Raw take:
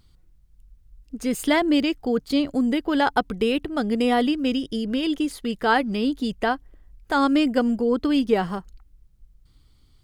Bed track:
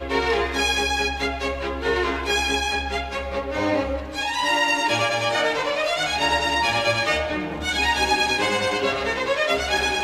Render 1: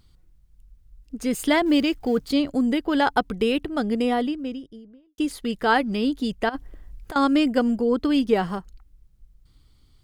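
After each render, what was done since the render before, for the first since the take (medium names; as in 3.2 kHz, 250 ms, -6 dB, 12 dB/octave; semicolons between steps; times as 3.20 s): 1.66–2.31 s: companding laws mixed up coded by mu; 3.66–5.18 s: studio fade out; 6.49–7.16 s: compressor with a negative ratio -32 dBFS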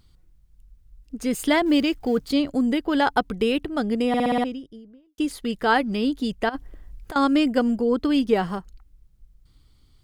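4.08 s: stutter in place 0.06 s, 6 plays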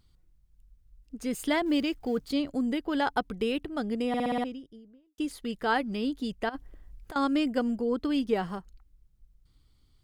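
trim -7 dB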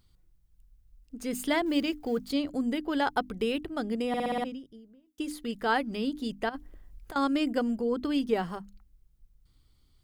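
treble shelf 12 kHz +5.5 dB; hum notches 50/100/150/200/250/300 Hz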